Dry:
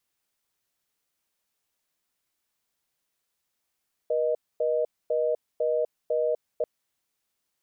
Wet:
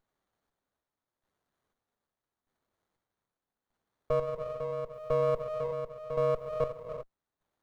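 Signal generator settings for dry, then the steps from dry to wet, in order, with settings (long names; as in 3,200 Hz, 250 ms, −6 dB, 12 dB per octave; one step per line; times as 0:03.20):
call progress tone reorder tone, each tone −25 dBFS 2.54 s
square-wave tremolo 0.81 Hz, depth 60%, duty 40%
reverb whose tail is shaped and stops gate 400 ms rising, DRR 5 dB
windowed peak hold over 17 samples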